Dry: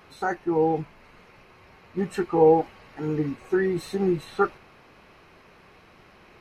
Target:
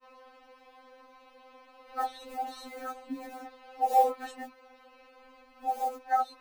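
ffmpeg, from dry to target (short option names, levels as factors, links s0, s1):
-af "areverse,equalizer=f=500:t=o:w=1:g=11,equalizer=f=1000:t=o:w=1:g=9,equalizer=f=4000:t=o:w=1:g=7,acrusher=bits=8:mode=log:mix=0:aa=0.000001,afftfilt=real='re*3.46*eq(mod(b,12),0)':imag='im*3.46*eq(mod(b,12),0)':win_size=2048:overlap=0.75,volume=0.398"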